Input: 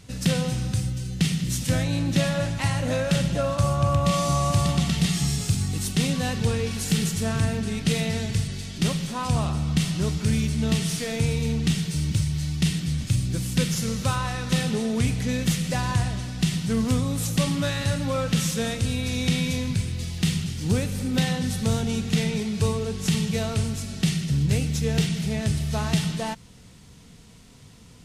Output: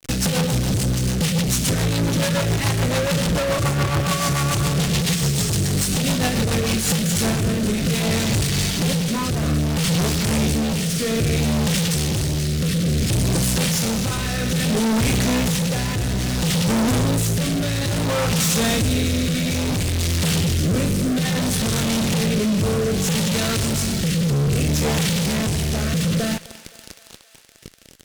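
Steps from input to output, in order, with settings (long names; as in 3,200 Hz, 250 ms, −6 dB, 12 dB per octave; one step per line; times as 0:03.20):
high-shelf EQ 3,400 Hz +2 dB
double-tracking delay 36 ms −10 dB
fuzz pedal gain 47 dB, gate −41 dBFS
rotating-speaker cabinet horn 7 Hz, later 0.6 Hz, at 0:06.48
feedback echo with a high-pass in the loop 260 ms, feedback 73%, high-pass 490 Hz, level −18 dB
level −4 dB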